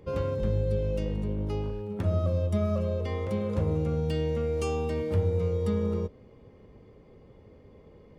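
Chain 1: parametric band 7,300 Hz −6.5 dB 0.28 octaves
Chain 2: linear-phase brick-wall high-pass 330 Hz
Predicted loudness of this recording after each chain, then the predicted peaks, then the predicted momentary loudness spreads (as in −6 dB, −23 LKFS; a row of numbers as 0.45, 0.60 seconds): −29.5, −34.0 LKFS; −14.5, −22.0 dBFS; 4, 7 LU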